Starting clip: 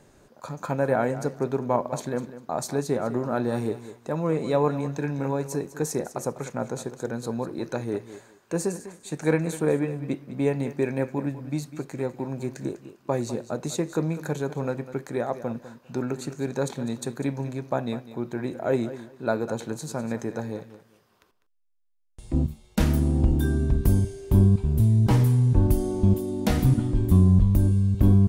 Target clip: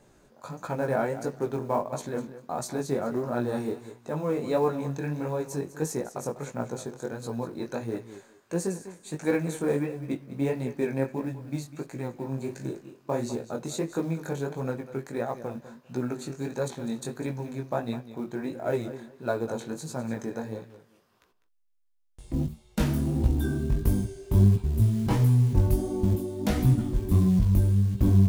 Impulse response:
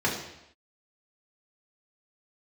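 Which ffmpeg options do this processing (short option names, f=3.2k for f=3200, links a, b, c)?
-filter_complex "[0:a]acrusher=bits=8:mode=log:mix=0:aa=0.000001,flanger=delay=16:depth=6.5:speed=1.5,asettb=1/sr,asplit=3[a][b][c];[a]atrim=end=12.284[d];[b]atrim=start=12.28:end=13.45,asetpts=PTS-STARTPTS,afade=t=in:d=0.004:c=qsin,afade=t=out:st=1.166:d=0.004:c=qsin,asplit=2[e][f];[f]adelay=38,volume=-8dB[g];[e][g]amix=inputs=2:normalize=0,atrim=end_sample=51597[h];[c]atrim=start=13.446[i];[d][h]acrossfade=d=0.004:c1=hsin:c2=qsin[j];[j][i]acrossfade=d=0.004:c1=qsin:c2=hsin"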